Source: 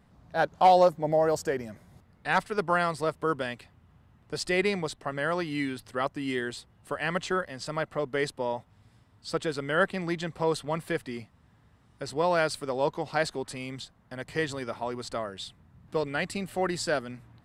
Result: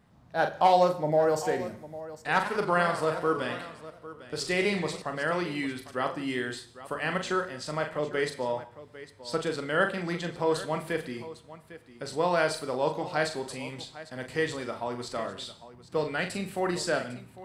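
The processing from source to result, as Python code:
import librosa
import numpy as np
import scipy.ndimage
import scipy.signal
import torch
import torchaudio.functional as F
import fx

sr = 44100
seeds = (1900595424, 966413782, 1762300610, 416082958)

y = fx.low_shelf(x, sr, hz=61.0, db=-7.5)
y = fx.echo_multitap(y, sr, ms=(40, 802), db=(-7.0, -15.5))
y = fx.rev_gated(y, sr, seeds[0], gate_ms=240, shape='falling', drr_db=10.5)
y = fx.echo_warbled(y, sr, ms=91, feedback_pct=51, rate_hz=2.8, cents=190, wet_db=-11.0, at=(2.32, 5.02))
y = F.gain(torch.from_numpy(y), -1.0).numpy()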